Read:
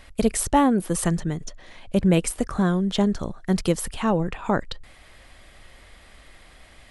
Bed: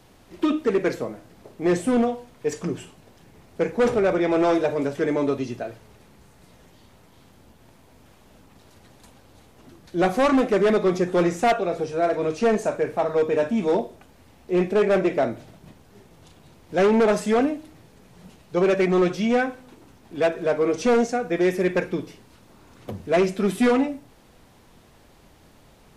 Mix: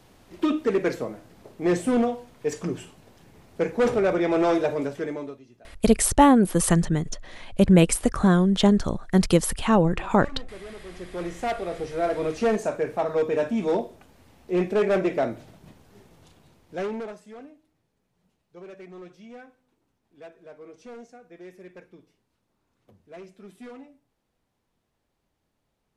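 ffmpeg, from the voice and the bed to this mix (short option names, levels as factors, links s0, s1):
-filter_complex "[0:a]adelay=5650,volume=1.41[s0];[1:a]volume=8.41,afade=t=out:st=4.7:d=0.7:silence=0.0891251,afade=t=in:st=10.88:d=1.28:silence=0.1,afade=t=out:st=16.06:d=1.12:silence=0.0891251[s1];[s0][s1]amix=inputs=2:normalize=0"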